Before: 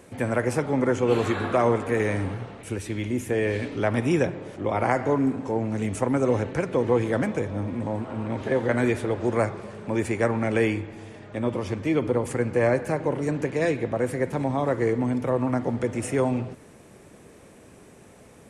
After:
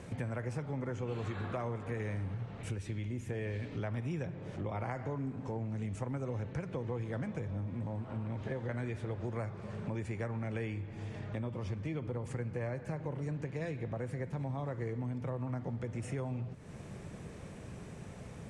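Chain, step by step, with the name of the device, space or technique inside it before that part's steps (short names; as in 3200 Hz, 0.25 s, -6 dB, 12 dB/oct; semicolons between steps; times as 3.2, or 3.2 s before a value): jukebox (LPF 7300 Hz 12 dB/oct; resonant low shelf 210 Hz +7 dB, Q 1.5; compressor 4:1, threshold -38 dBFS, peak gain reduction 18.5 dB)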